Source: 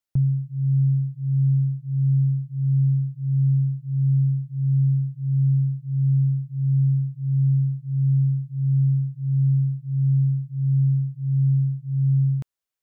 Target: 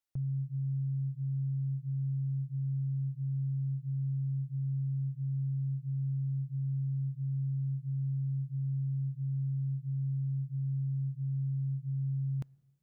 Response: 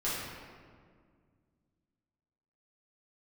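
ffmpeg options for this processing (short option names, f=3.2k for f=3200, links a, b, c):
-filter_complex "[0:a]alimiter=level_in=1.5dB:limit=-24dB:level=0:latency=1,volume=-1.5dB,asplit=2[a][b];[1:a]atrim=start_sample=2205,asetrate=61740,aresample=44100[c];[b][c]afir=irnorm=-1:irlink=0,volume=-30dB[d];[a][d]amix=inputs=2:normalize=0,volume=-4.5dB"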